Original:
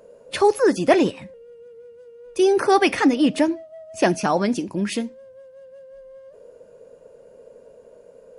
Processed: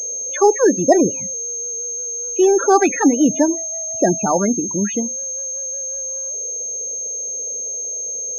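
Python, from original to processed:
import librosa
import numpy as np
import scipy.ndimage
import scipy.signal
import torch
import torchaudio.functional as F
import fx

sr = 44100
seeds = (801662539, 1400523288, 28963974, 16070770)

y = fx.spec_topn(x, sr, count=16)
y = fx.pwm(y, sr, carrier_hz=6400.0)
y = y * librosa.db_to_amplitude(3.5)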